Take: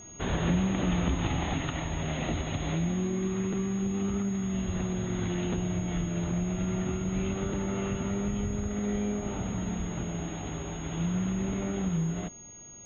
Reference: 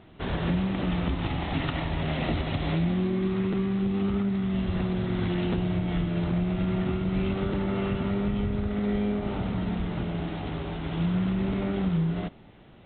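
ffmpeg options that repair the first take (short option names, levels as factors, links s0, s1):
-af "bandreject=f=6600:w=30,asetnsamples=n=441:p=0,asendcmd='1.54 volume volume 3.5dB',volume=1"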